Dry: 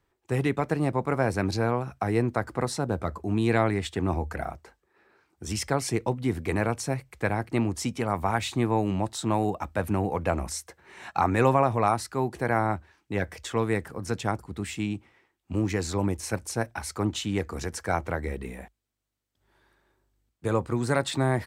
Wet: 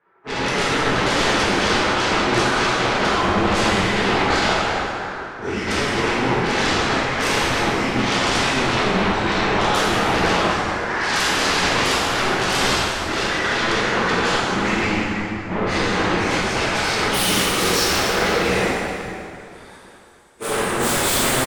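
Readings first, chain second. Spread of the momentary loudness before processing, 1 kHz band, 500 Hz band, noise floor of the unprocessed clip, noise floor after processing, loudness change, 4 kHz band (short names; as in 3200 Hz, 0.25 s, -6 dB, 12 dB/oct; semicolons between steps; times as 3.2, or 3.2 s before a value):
9 LU, +9.5 dB, +6.5 dB, -77 dBFS, -40 dBFS, +9.0 dB, +19.0 dB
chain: phase scrambler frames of 0.1 s; HPF 620 Hz 6 dB/oct; bell 1700 Hz -5.5 dB 0.31 oct; compressor 4:1, threshold -42 dBFS, peak gain reduction 18.5 dB; low-pass sweep 1600 Hz -> 9100 Hz, 15.57–19.56; sine folder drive 19 dB, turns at -24.5 dBFS; on a send: frequency-shifting echo 0.17 s, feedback 58%, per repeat -110 Hz, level -12 dB; on the sum: plate-style reverb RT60 3.4 s, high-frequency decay 0.7×, DRR -8 dB; three-band expander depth 40%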